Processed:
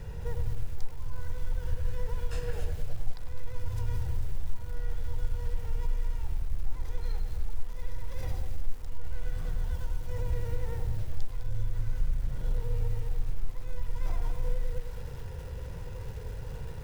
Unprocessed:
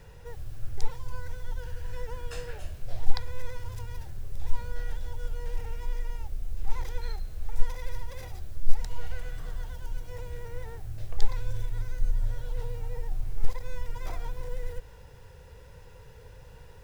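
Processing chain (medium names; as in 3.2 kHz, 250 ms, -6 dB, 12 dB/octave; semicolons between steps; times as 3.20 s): 11.92–12.58 s: comb filter that takes the minimum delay 5.6 ms; bass shelf 310 Hz +9.5 dB; in parallel at -7 dB: saturation -10 dBFS, distortion -5 dB; on the sum: compression 4:1, threshold -24 dBFS, peak gain reduction 22.5 dB; tape echo 101 ms, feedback 54%, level -4 dB, low-pass 1.3 kHz; bit-crushed delay 205 ms, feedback 35%, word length 7-bit, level -10.5 dB; trim -1 dB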